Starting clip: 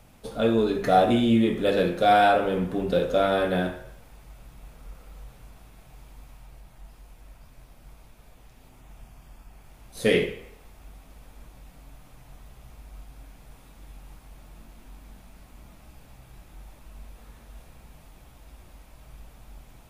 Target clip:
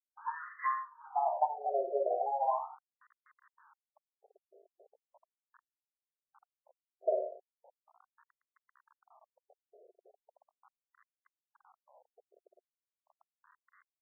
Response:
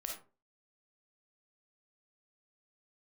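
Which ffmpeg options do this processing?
-filter_complex "[0:a]afftdn=noise_reduction=19:noise_floor=-41,acrossover=split=490[link_01][link_02];[link_01]aeval=exprs='val(0)*(1-0.5/2+0.5/2*cos(2*PI*2.3*n/s))':channel_layout=same[link_03];[link_02]aeval=exprs='val(0)*(1-0.5/2-0.5/2*cos(2*PI*2.3*n/s))':channel_layout=same[link_04];[link_03][link_04]amix=inputs=2:normalize=0,acrossover=split=510|2700[link_05][link_06][link_07];[link_06]acontrast=26[link_08];[link_05][link_08][link_07]amix=inputs=3:normalize=0,flanger=delay=18:depth=2.7:speed=0.2,aecho=1:1:55|67:0.188|0.316,aeval=exprs='val(0)*gte(abs(val(0)),0.00562)':channel_layout=same,asetrate=62622,aresample=44100,lowshelf=frequency=200:gain=3.5,acompressor=threshold=-26dB:ratio=8,afftfilt=real='re*between(b*sr/1024,500*pow(1500/500,0.5+0.5*sin(2*PI*0.38*pts/sr))/1.41,500*pow(1500/500,0.5+0.5*sin(2*PI*0.38*pts/sr))*1.41)':imag='im*between(b*sr/1024,500*pow(1500/500,0.5+0.5*sin(2*PI*0.38*pts/sr))/1.41,500*pow(1500/500,0.5+0.5*sin(2*PI*0.38*pts/sr))*1.41)':win_size=1024:overlap=0.75,volume=2.5dB"

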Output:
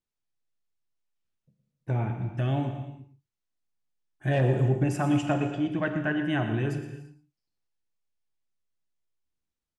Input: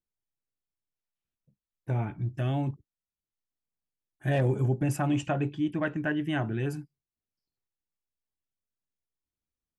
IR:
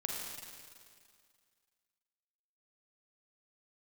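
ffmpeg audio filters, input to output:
-filter_complex "[0:a]lowpass=7900,asplit=2[link_01][link_02];[link_02]adelay=116.6,volume=-12dB,highshelf=frequency=4000:gain=-2.62[link_03];[link_01][link_03]amix=inputs=2:normalize=0,asplit=2[link_04][link_05];[1:a]atrim=start_sample=2205,afade=type=out:start_time=0.42:duration=0.01,atrim=end_sample=18963[link_06];[link_05][link_06]afir=irnorm=-1:irlink=0,volume=-2.5dB[link_07];[link_04][link_07]amix=inputs=2:normalize=0,volume=-3dB"

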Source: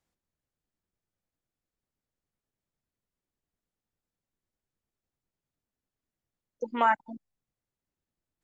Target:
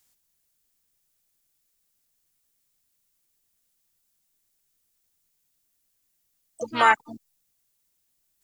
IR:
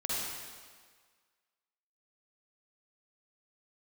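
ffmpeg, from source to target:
-filter_complex "[0:a]asplit=3[link_01][link_02][link_03];[link_02]asetrate=22050,aresample=44100,atempo=2,volume=-13dB[link_04];[link_03]asetrate=58866,aresample=44100,atempo=0.749154,volume=-9dB[link_05];[link_01][link_04][link_05]amix=inputs=3:normalize=0,crystalizer=i=8.5:c=0"

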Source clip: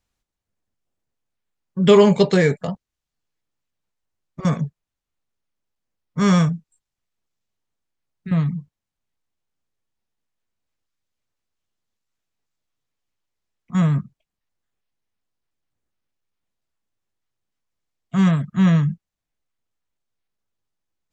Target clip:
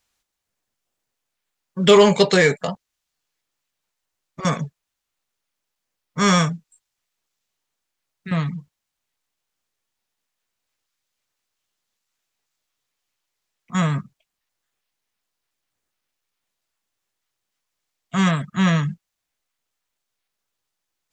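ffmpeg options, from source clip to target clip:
ffmpeg -i in.wav -filter_complex "[0:a]asplit=2[link_01][link_02];[link_02]highpass=frequency=720:poles=1,volume=10dB,asoftclip=type=tanh:threshold=-2dB[link_03];[link_01][link_03]amix=inputs=2:normalize=0,lowpass=frequency=2800:poles=1,volume=-6dB,crystalizer=i=3:c=0" out.wav

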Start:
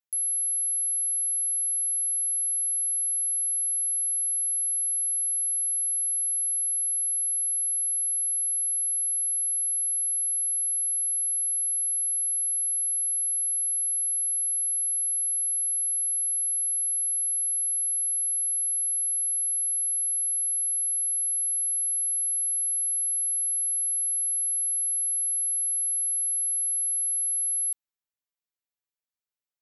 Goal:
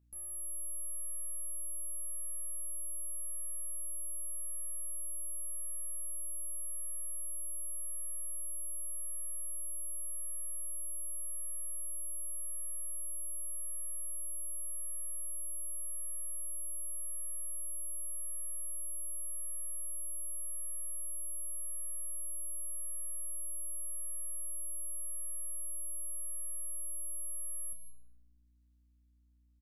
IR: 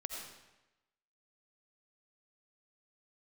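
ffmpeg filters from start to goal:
-filter_complex "[0:a]tremolo=f=0.87:d=0.29,aeval=exprs='(tanh(178*val(0)+0.4)-tanh(0.4))/178':channel_layout=same,aeval=exprs='val(0)+0.000355*(sin(2*PI*60*n/s)+sin(2*PI*2*60*n/s)/2+sin(2*PI*3*60*n/s)/3+sin(2*PI*4*60*n/s)/4+sin(2*PI*5*60*n/s)/5)':channel_layout=same,asplit=2[link_01][link_02];[link_02]adelay=15,volume=-9.5dB[link_03];[link_01][link_03]amix=inputs=2:normalize=0,asplit=2[link_04][link_05];[1:a]atrim=start_sample=2205,adelay=30[link_06];[link_05][link_06]afir=irnorm=-1:irlink=0,volume=-5dB[link_07];[link_04][link_07]amix=inputs=2:normalize=0"

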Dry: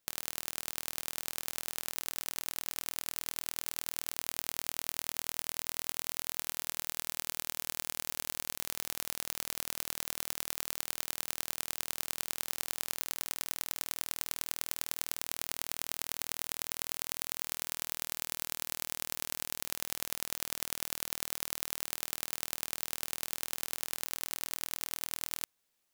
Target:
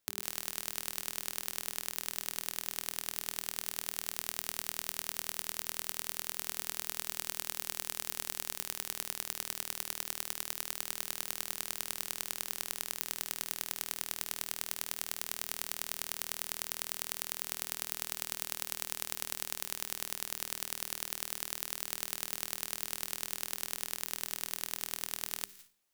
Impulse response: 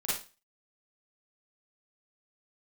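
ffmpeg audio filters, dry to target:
-filter_complex "[0:a]bandreject=frequency=99.97:width_type=h:width=4,bandreject=frequency=199.94:width_type=h:width=4,bandreject=frequency=299.91:width_type=h:width=4,bandreject=frequency=399.88:width_type=h:width=4,asplit=2[link_01][link_02];[link_02]equalizer=frequency=490:width_type=o:width=2.4:gain=-14[link_03];[1:a]atrim=start_sample=2205,adelay=117[link_04];[link_03][link_04]afir=irnorm=-1:irlink=0,volume=-20dB[link_05];[link_01][link_05]amix=inputs=2:normalize=0,volume=-1dB"

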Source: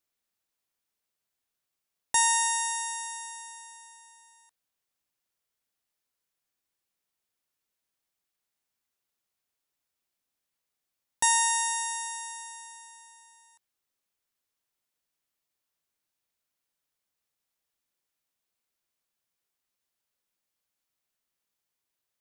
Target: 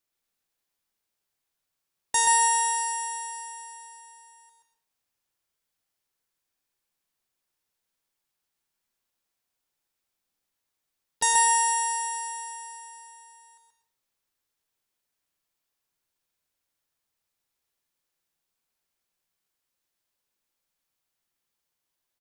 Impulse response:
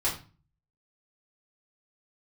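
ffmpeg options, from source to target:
-filter_complex "[0:a]asplit=2[link_01][link_02];[link_02]asetrate=22050,aresample=44100,atempo=2,volume=-18dB[link_03];[link_01][link_03]amix=inputs=2:normalize=0,aecho=1:1:130:0.596,asplit=2[link_04][link_05];[1:a]atrim=start_sample=2205,afade=type=out:start_time=0.34:duration=0.01,atrim=end_sample=15435,adelay=105[link_06];[link_05][link_06]afir=irnorm=-1:irlink=0,volume=-14.5dB[link_07];[link_04][link_07]amix=inputs=2:normalize=0"

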